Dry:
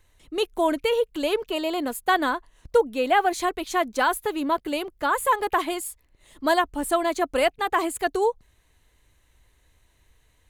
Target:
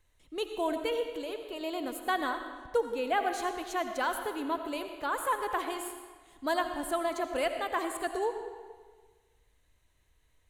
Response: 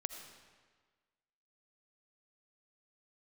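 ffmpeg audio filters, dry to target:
-filter_complex "[0:a]asettb=1/sr,asplit=3[s0][s1][s2];[s0]atrim=end=1.074[s3];[s1]atrim=start=1.07:end=1.61,asetpts=PTS-STARTPTS,afade=t=in:d=0.004:c=qsin,afade=t=out:st=0.536:d=0.004:c=qsin,acompressor=threshold=0.0282:ratio=2[s4];[s2]atrim=start=1.606[s5];[s3][s4]acrossfade=d=0.004:c1=hsin:c2=qsin[s6];[s6][s5]acrossfade=d=0.004:c1=qsin:c2=hsin[s7];[1:a]atrim=start_sample=2205[s8];[s7][s8]afir=irnorm=-1:irlink=0,volume=0.422"

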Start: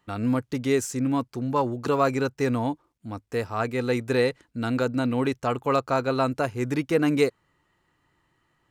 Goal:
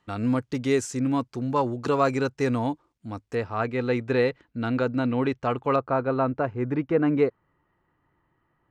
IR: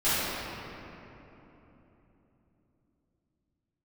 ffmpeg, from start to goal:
-af "asetnsamples=n=441:p=0,asendcmd='3.35 lowpass f 3400;5.76 lowpass f 1600',lowpass=8100"

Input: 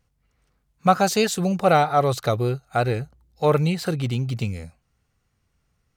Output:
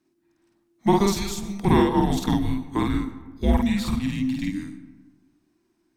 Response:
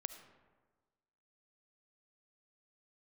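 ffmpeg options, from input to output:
-filter_complex "[0:a]asettb=1/sr,asplit=3[s0][s1][s2];[s0]atrim=end=1.094[s3];[s1]atrim=start=1.09:end=1.65,asetpts=PTS-STARTPTS,afade=t=in:d=0.004:c=qsin,afade=t=out:st=0.556:d=0.004:c=qsin,acrossover=split=710|4000[s4][s5][s6];[s4]acompressor=threshold=0.0282:ratio=4[s7];[s5]acompressor=threshold=0.00891:ratio=4[s8];[s6]acompressor=threshold=0.0282:ratio=4[s9];[s7][s8][s9]amix=inputs=3:normalize=0[s10];[s2]atrim=start=1.646[s11];[s3][s10]acrossfade=d=0.004:c1=hsin:c2=qsin[s12];[s12][s11]acrossfade=d=0.004:c1=qsin:c2=hsin,afreqshift=-390,asplit=2[s13][s14];[1:a]atrim=start_sample=2205,adelay=50[s15];[s14][s15]afir=irnorm=-1:irlink=0,volume=1.26[s16];[s13][s16]amix=inputs=2:normalize=0,volume=0.708"

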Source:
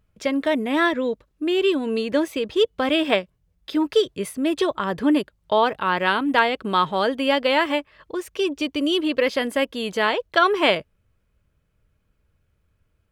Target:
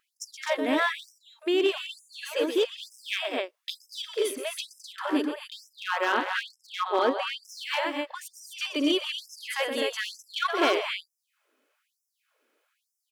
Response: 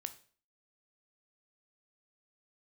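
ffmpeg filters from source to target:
-filter_complex "[0:a]asplit=2[s0][s1];[s1]alimiter=limit=0.224:level=0:latency=1,volume=0.75[s2];[s0][s2]amix=inputs=2:normalize=0,acompressor=threshold=0.0158:ratio=1.5,asettb=1/sr,asplit=3[s3][s4][s5];[s3]atrim=end=6.124[s6];[s4]atrim=start=6.12:end=7.43,asetpts=PTS-STARTPTS,afade=t=in:d=0.004:c=qsin,afade=t=out:st=1.306:d=0.004:c=qsin,aemphasis=mode=reproduction:type=bsi[s7];[s5]atrim=start=7.426[s8];[s6][s7]acrossfade=d=0.004:c1=hsin:c2=qsin[s9];[s9][s8]acrossfade=d=0.004:c1=qsin:c2=hsin,aecho=1:1:122.4|212.8|256.6:0.316|0.316|0.501,aeval=exprs='clip(val(0),-1,0.126)':c=same,afftfilt=real='re*gte(b*sr/1024,220*pow(5200/220,0.5+0.5*sin(2*PI*1.1*pts/sr)))':imag='im*gte(b*sr/1024,220*pow(5200/220,0.5+0.5*sin(2*PI*1.1*pts/sr)))':win_size=1024:overlap=0.75"

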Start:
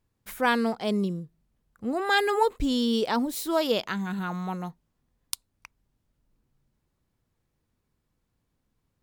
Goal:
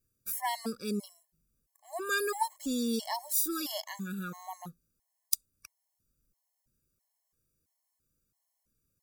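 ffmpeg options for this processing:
-af "aexciter=amount=4.7:drive=5.8:freq=4800,afftfilt=real='re*gt(sin(2*PI*1.5*pts/sr)*(1-2*mod(floor(b*sr/1024/560),2)),0)':imag='im*gt(sin(2*PI*1.5*pts/sr)*(1-2*mod(floor(b*sr/1024/560),2)),0)':win_size=1024:overlap=0.75,volume=0.501"

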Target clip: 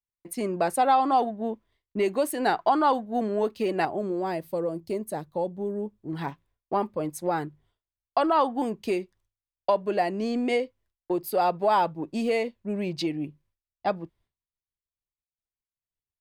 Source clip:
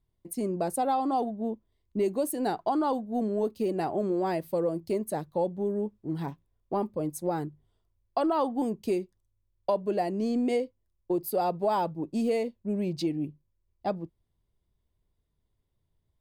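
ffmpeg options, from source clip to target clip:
-af "agate=range=0.0224:threshold=0.00126:ratio=3:detection=peak,asetnsamples=n=441:p=0,asendcmd='3.85 equalizer g 2.5;6.13 equalizer g 11.5',equalizer=f=1900:w=0.43:g=14.5,volume=0.841"

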